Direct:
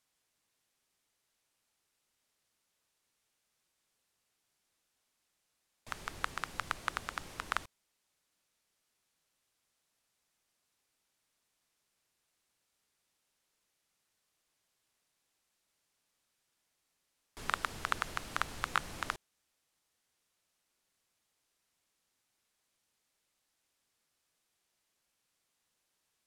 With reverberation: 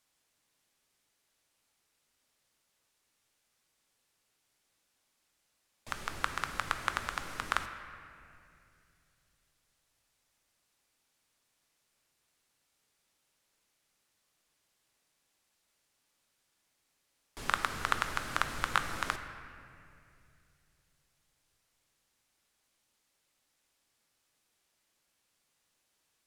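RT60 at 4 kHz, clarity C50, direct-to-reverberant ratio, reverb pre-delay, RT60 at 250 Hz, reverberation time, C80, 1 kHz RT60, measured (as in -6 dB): 1.7 s, 8.5 dB, 7.0 dB, 3 ms, 3.1 s, 2.5 s, 9.5 dB, 2.3 s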